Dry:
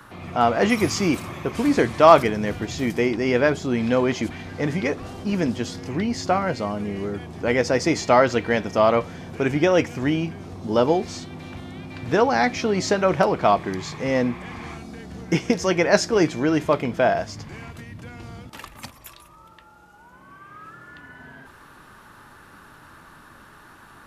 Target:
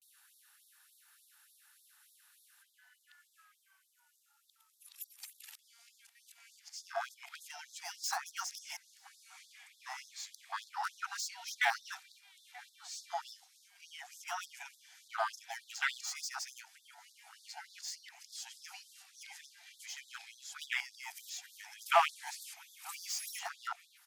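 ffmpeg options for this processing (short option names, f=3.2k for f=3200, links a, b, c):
-filter_complex "[0:a]areverse,equalizer=f=1.1k:t=o:w=0.35:g=-10.5,acrossover=split=130|1200[a][b][c];[c]asoftclip=type=tanh:threshold=-25.5dB[d];[a][b][d]amix=inputs=3:normalize=0,afwtdn=0.0562,aderivative,asplit=2[e][f];[f]adelay=932.9,volume=-19dB,highshelf=f=4k:g=-21[g];[e][g]amix=inputs=2:normalize=0,afftfilt=real='re*gte(b*sr/1024,660*pow(3500/660,0.5+0.5*sin(2*PI*3.4*pts/sr)))':imag='im*gte(b*sr/1024,660*pow(3500/660,0.5+0.5*sin(2*PI*3.4*pts/sr)))':win_size=1024:overlap=0.75,volume=11.5dB"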